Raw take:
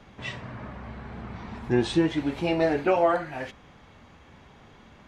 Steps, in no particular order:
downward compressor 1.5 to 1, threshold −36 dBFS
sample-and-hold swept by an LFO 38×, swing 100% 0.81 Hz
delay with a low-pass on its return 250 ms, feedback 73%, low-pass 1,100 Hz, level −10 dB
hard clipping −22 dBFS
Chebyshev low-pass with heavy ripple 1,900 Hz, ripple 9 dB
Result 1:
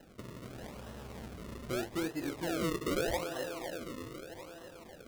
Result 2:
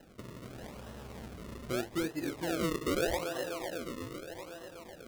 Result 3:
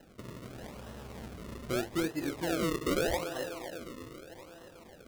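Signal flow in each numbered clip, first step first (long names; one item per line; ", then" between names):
hard clipping, then delay with a low-pass on its return, then downward compressor, then Chebyshev low-pass with heavy ripple, then sample-and-hold swept by an LFO
delay with a low-pass on its return, then downward compressor, then hard clipping, then Chebyshev low-pass with heavy ripple, then sample-and-hold swept by an LFO
Chebyshev low-pass with heavy ripple, then hard clipping, then downward compressor, then delay with a low-pass on its return, then sample-and-hold swept by an LFO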